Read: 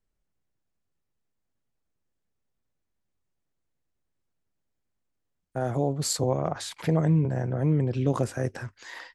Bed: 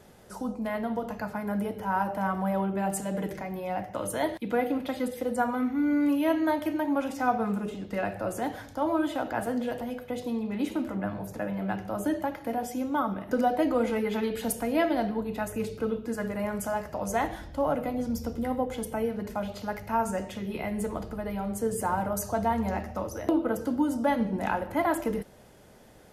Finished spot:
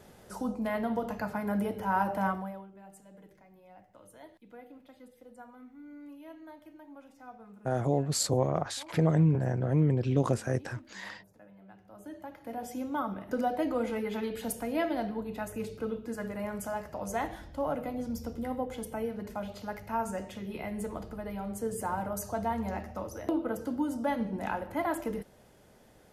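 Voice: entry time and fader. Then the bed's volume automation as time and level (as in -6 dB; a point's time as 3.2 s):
2.10 s, -1.5 dB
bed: 2.28 s -0.5 dB
2.7 s -23 dB
11.75 s -23 dB
12.71 s -5 dB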